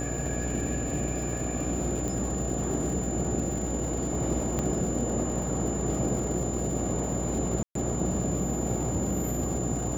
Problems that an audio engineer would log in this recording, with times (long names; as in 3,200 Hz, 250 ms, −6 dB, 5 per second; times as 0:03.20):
mains buzz 60 Hz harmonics 13 −33 dBFS
surface crackle 220 per second −36 dBFS
whistle 7,100 Hz −36 dBFS
0:02.08: click
0:04.59: click −16 dBFS
0:07.63–0:07.75: drop-out 123 ms